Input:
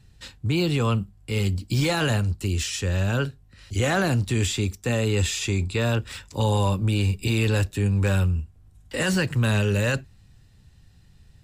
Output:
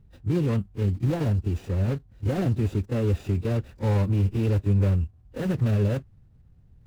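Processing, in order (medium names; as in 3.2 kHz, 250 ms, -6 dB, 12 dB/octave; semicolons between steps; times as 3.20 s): median filter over 41 samples; pre-echo 40 ms -14 dB; time stretch by phase-locked vocoder 0.6×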